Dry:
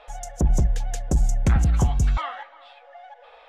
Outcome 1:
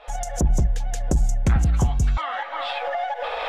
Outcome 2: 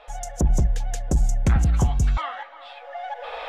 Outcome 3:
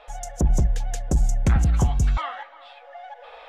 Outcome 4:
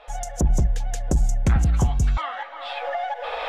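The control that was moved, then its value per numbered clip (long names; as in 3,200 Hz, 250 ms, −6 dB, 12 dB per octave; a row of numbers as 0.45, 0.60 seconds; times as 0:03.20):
camcorder AGC, rising by: 86, 14, 5, 35 dB per second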